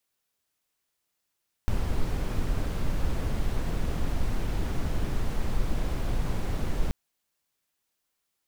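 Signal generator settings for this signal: noise brown, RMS -25.5 dBFS 5.23 s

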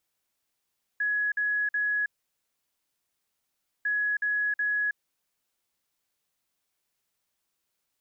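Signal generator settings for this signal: beep pattern sine 1680 Hz, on 0.32 s, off 0.05 s, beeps 3, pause 1.79 s, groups 2, -24 dBFS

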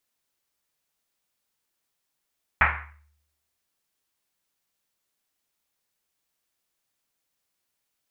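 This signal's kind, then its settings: Risset drum, pitch 74 Hz, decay 0.81 s, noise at 1600 Hz, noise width 1400 Hz, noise 75%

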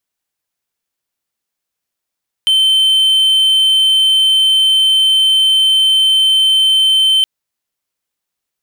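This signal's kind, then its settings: tone triangle 3090 Hz -6 dBFS 4.77 s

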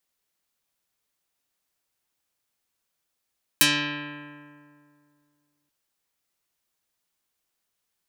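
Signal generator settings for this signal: plucked string D3, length 2.08 s, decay 2.34 s, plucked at 0.21, dark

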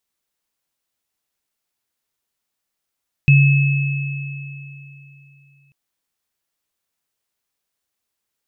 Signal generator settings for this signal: sine partials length 2.44 s, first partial 140 Hz, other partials 2590 Hz, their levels -8 dB, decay 3.08 s, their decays 3.27 s, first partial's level -7 dB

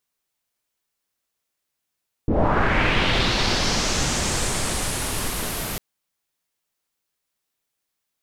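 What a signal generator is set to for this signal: swept filtered noise pink, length 3.50 s lowpass, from 270 Hz, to 13000 Hz, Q 2.2, linear, gain ramp -11 dB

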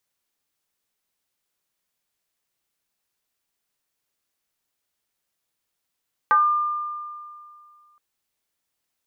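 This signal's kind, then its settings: FM tone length 1.67 s, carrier 1200 Hz, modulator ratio 0.29, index 1.1, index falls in 0.28 s exponential, decay 2.28 s, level -12.5 dB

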